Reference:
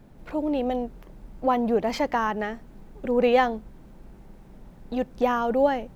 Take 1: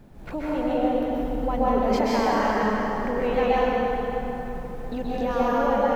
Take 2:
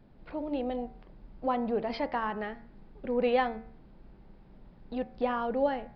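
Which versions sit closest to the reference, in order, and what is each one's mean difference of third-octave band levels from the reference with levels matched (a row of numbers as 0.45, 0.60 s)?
2, 1; 2.0, 10.0 dB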